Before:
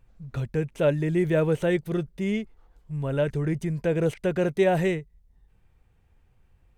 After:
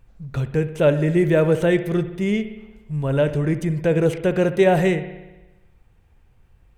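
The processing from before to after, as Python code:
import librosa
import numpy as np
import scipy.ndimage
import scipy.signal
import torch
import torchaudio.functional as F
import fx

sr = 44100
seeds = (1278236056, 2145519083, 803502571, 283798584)

y = fx.rev_spring(x, sr, rt60_s=1.1, pass_ms=(59,), chirp_ms=70, drr_db=11.0)
y = y * 10.0 ** (5.5 / 20.0)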